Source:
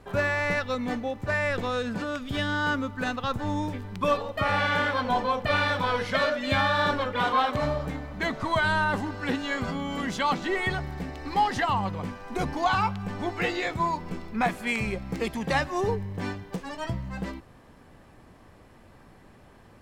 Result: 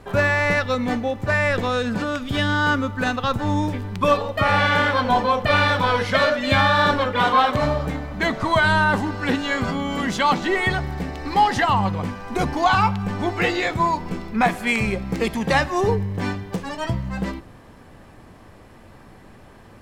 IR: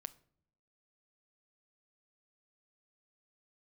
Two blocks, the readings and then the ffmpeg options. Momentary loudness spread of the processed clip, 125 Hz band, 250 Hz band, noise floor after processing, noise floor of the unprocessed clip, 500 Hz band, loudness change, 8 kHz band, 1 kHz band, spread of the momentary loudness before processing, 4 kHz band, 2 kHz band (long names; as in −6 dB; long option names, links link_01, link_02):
9 LU, +8.0 dB, +7.0 dB, −46 dBFS, −53 dBFS, +6.5 dB, +7.0 dB, +6.5 dB, +7.0 dB, 9 LU, +6.5 dB, +6.5 dB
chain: -filter_complex "[0:a]asplit=2[link_01][link_02];[1:a]atrim=start_sample=2205,asetrate=31311,aresample=44100[link_03];[link_02][link_03]afir=irnorm=-1:irlink=0,volume=4dB[link_04];[link_01][link_04]amix=inputs=2:normalize=0"